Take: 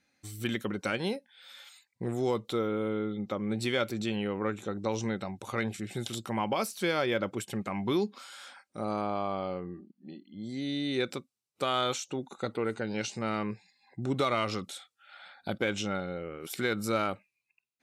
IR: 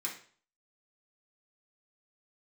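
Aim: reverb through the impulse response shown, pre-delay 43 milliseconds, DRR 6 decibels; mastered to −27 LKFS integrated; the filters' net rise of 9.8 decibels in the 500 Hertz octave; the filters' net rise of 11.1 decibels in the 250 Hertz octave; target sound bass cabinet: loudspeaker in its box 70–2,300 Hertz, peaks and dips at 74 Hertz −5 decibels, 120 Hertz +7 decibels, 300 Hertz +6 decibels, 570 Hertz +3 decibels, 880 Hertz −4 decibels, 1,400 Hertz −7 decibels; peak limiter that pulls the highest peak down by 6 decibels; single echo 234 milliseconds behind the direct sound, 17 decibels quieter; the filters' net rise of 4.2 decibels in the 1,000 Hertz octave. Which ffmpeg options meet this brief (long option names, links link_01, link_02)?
-filter_complex "[0:a]equalizer=frequency=250:width_type=o:gain=8.5,equalizer=frequency=500:width_type=o:gain=5.5,equalizer=frequency=1000:width_type=o:gain=7.5,alimiter=limit=-14.5dB:level=0:latency=1,aecho=1:1:234:0.141,asplit=2[link_01][link_02];[1:a]atrim=start_sample=2205,adelay=43[link_03];[link_02][link_03]afir=irnorm=-1:irlink=0,volume=-8dB[link_04];[link_01][link_04]amix=inputs=2:normalize=0,highpass=frequency=70:width=0.5412,highpass=frequency=70:width=1.3066,equalizer=frequency=74:width_type=q:width=4:gain=-5,equalizer=frequency=120:width_type=q:width=4:gain=7,equalizer=frequency=300:width_type=q:width=4:gain=6,equalizer=frequency=570:width_type=q:width=4:gain=3,equalizer=frequency=880:width_type=q:width=4:gain=-4,equalizer=frequency=1400:width_type=q:width=4:gain=-7,lowpass=frequency=2300:width=0.5412,lowpass=frequency=2300:width=1.3066,volume=-2.5dB"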